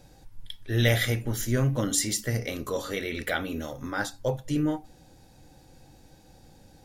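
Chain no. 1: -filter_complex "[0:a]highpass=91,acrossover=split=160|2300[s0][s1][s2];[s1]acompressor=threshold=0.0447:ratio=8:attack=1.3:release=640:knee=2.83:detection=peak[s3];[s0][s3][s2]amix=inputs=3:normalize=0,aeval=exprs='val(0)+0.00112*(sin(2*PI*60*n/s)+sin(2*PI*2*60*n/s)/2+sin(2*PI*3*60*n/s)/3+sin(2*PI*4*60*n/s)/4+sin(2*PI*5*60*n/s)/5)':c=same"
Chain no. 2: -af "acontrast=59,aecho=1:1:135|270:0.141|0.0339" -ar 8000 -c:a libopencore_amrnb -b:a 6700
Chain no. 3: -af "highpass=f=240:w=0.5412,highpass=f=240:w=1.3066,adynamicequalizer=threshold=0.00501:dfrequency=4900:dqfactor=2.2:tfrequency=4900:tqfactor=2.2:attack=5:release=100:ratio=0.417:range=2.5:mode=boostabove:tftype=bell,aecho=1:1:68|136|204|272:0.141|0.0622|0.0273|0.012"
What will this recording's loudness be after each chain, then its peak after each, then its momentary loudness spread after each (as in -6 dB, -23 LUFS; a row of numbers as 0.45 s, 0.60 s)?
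-30.5 LUFS, -24.0 LUFS, -29.0 LUFS; -11.5 dBFS, -5.0 dBFS, -10.0 dBFS; 10 LU, 9 LU, 11 LU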